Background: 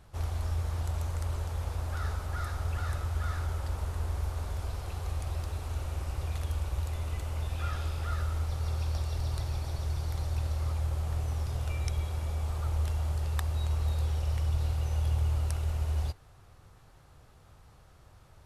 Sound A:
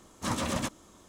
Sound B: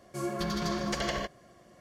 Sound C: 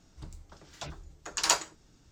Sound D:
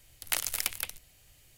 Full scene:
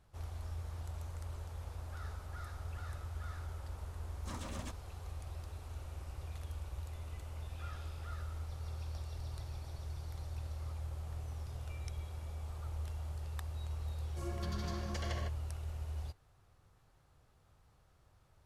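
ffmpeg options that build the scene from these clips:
-filter_complex "[0:a]volume=0.282[s0];[1:a]atrim=end=1.08,asetpts=PTS-STARTPTS,volume=0.178,afade=t=in:d=0.004:c=hsin,afade=t=out:st=1.076:d=0.004:c=hsin,adelay=4030[s1];[2:a]atrim=end=1.8,asetpts=PTS-STARTPTS,volume=0.266,afade=t=in:d=0.004:c=hsin,afade=t=out:st=1.796:d=0.004:c=hsin,adelay=14020[s2];[s0][s1][s2]amix=inputs=3:normalize=0"

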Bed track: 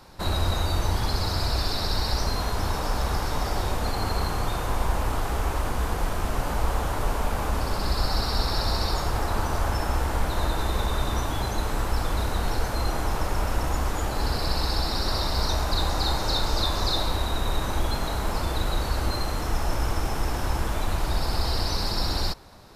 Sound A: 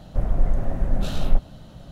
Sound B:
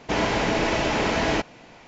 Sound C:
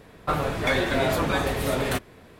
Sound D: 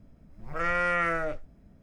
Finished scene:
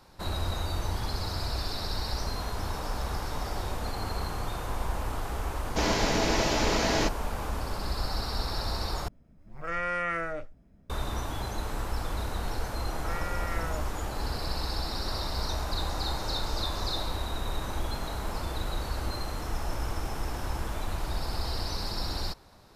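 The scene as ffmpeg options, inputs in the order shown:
-filter_complex "[4:a]asplit=2[s0][s1];[0:a]volume=0.473[s2];[2:a]highshelf=f=3600:t=q:w=1.5:g=6[s3];[s1]alimiter=limit=0.0841:level=0:latency=1:release=71[s4];[s2]asplit=2[s5][s6];[s5]atrim=end=9.084[s7];[s0]atrim=end=1.82,asetpts=PTS-STARTPTS,volume=0.631[s8];[s6]atrim=start=10.896[s9];[s3]atrim=end=1.87,asetpts=PTS-STARTPTS,volume=0.631,afade=t=in:d=0.004:c=hsin,afade=t=out:st=1.866:d=0.004:c=hsin,adelay=5670[s10];[s4]atrim=end=1.82,asetpts=PTS-STARTPTS,volume=0.447,afade=t=in:d=0.004:c=hsin,afade=t=out:st=1.816:d=0.004:c=hsin,adelay=12490[s11];[s7][s8]acrossfade=d=0.004:c1=hsin:c2=hsin[s12];[s12][s9]acrossfade=d=0.004:c1=hsin:c2=hsin[s13];[s13][s10][s11]amix=inputs=3:normalize=0"

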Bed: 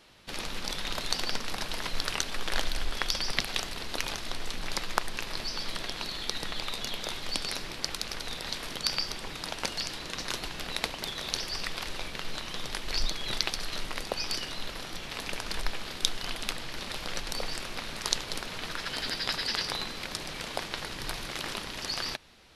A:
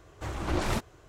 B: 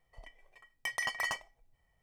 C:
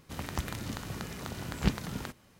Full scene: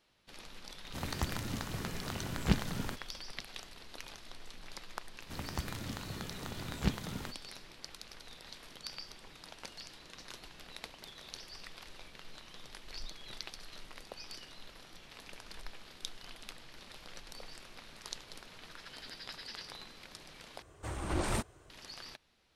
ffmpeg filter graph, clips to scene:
-filter_complex "[3:a]asplit=2[s0][s1];[0:a]volume=0.178[s2];[1:a]equalizer=f=8800:w=5.7:g=14.5[s3];[s2]asplit=2[s4][s5];[s4]atrim=end=20.624[s6];[s3]atrim=end=1.08,asetpts=PTS-STARTPTS,volume=0.596[s7];[s5]atrim=start=21.696[s8];[s0]atrim=end=2.39,asetpts=PTS-STARTPTS,volume=0.891,afade=t=in:d=0.004:c=hsin,afade=t=out:st=2.386:d=0.004:c=hsin,adelay=840[s9];[s1]atrim=end=2.39,asetpts=PTS-STARTPTS,volume=0.631,afade=t=in:d=0.004:c=hsin,afade=t=out:st=2.386:d=0.004:c=hsin,adelay=5200[s10];[s6][s7]acrossfade=d=0.004:c1=hsin:c2=hsin[s11];[s11][s8]acrossfade=d=0.004:c1=hsin:c2=hsin[s12];[s12][s9][s10]amix=inputs=3:normalize=0"

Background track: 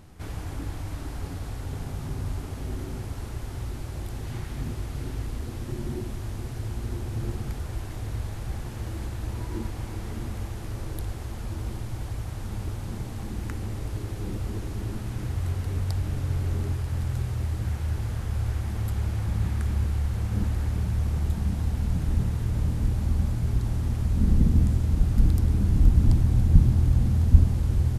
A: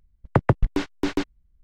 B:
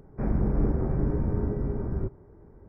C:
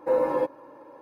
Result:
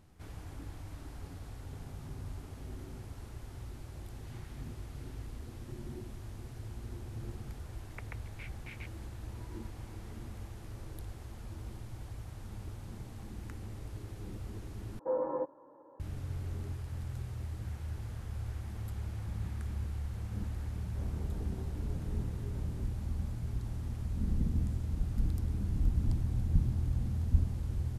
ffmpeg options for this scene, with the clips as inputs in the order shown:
-filter_complex "[0:a]volume=0.266[s0];[1:a]bandpass=f=2300:t=q:w=8.2:csg=0[s1];[3:a]lowpass=f=1300:w=0.5412,lowpass=f=1300:w=1.3066[s2];[2:a]flanger=delay=18:depth=3.5:speed=1.3[s3];[s0]asplit=2[s4][s5];[s4]atrim=end=14.994[s6];[s2]atrim=end=1.01,asetpts=PTS-STARTPTS,volume=0.335[s7];[s5]atrim=start=15.996[s8];[s1]atrim=end=1.63,asetpts=PTS-STARTPTS,volume=0.562,afade=t=in:d=0.004:c=hsin,afade=t=out:st=1.626:d=0.004:c=hsin,adelay=7630[s9];[s3]atrim=end=2.68,asetpts=PTS-STARTPTS,volume=0.188,afade=t=in:d=0.004:c=hsin,afade=t=out:st=2.676:d=0.004:c=hsin,adelay=20760[s10];[s6][s7]acrossfade=d=0.004:c1=hsin:c2=hsin[s11];[s11][s8]acrossfade=d=0.004:c1=hsin:c2=hsin[s12];[s12][s9][s10]amix=inputs=3:normalize=0"

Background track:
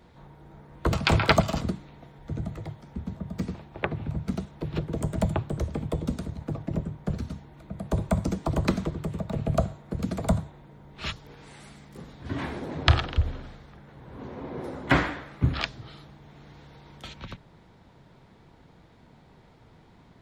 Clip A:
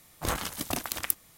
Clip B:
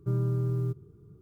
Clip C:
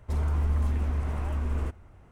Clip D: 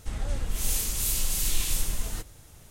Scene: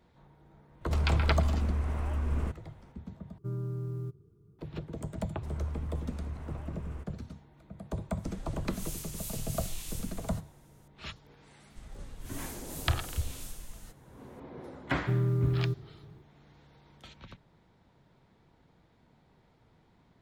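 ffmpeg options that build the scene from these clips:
-filter_complex "[3:a]asplit=2[s0][s1];[2:a]asplit=2[s2][s3];[4:a]asplit=2[s4][s5];[0:a]volume=0.335,asplit=2[s6][s7];[s6]atrim=end=3.384[s8];[s2]atrim=end=1.21,asetpts=PTS-STARTPTS,volume=0.422[s9];[s7]atrim=start=4.586[s10];[s0]atrim=end=2.11,asetpts=PTS-STARTPTS,volume=0.794,afade=t=in:d=0.004:c=hsin,afade=t=out:st=2.106:d=0.004:c=hsin,adelay=810[s11];[s1]atrim=end=2.11,asetpts=PTS-STARTPTS,volume=0.282,afade=t=in:d=0.004:c=hsin,afade=t=out:st=2.106:d=0.004:c=hsin,adelay=235053S[s12];[s4]atrim=end=2.7,asetpts=PTS-STARTPTS,volume=0.224,afade=t=in:d=0.004:c=hsin,afade=t=out:st=2.696:d=0.004:c=hsin,adelay=360738S[s13];[s5]atrim=end=2.7,asetpts=PTS-STARTPTS,volume=0.158,afade=t=in:d=0.004:c=hsin,afade=t=out:st=2.696:d=0.004:c=hsin,adelay=515970S[s14];[s3]atrim=end=1.21,asetpts=PTS-STARTPTS,afade=t=in:d=0.004:c=hsin,afade=t=out:st=1.206:d=0.004:c=hsin,adelay=15010[s15];[s8][s9]acrossfade=d=0.004:c1=hsin:c2=hsin[s16];[s16][s10]acrossfade=d=0.004:c1=hsin:c2=hsin[s17];[s17][s11][s12][s13][s14][s15]amix=inputs=6:normalize=0"

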